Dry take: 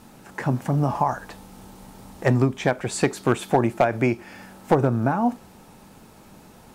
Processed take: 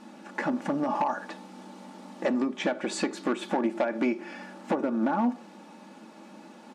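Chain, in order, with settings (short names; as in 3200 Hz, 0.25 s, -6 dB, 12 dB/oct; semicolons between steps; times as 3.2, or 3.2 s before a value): comb 3.5 ms, depth 52%; compressor 10:1, threshold -21 dBFS, peak gain reduction 10.5 dB; hard clip -19 dBFS, distortion -15 dB; brick-wall FIR high-pass 160 Hz; air absorption 81 m; on a send: reverb RT60 0.60 s, pre-delay 3 ms, DRR 16 dB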